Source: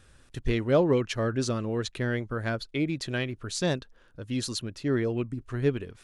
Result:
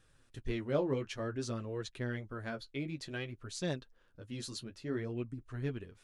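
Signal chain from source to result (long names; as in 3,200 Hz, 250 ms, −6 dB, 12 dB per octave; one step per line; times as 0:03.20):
flanger 0.55 Hz, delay 5.9 ms, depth 9.5 ms, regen −25%
level −6.5 dB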